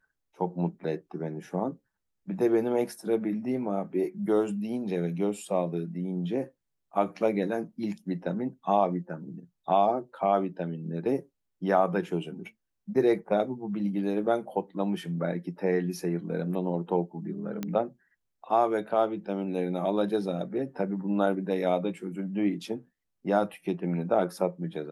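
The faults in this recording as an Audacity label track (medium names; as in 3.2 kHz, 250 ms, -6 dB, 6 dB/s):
17.630000	17.630000	pop -18 dBFS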